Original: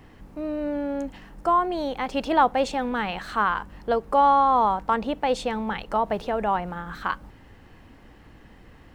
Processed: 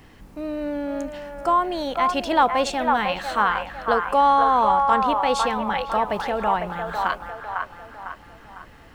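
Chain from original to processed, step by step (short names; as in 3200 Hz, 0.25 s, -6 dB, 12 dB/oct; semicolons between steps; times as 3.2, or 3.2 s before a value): high shelf 2300 Hz +7.5 dB; on a send: band-limited delay 0.502 s, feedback 44%, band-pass 1100 Hz, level -3 dB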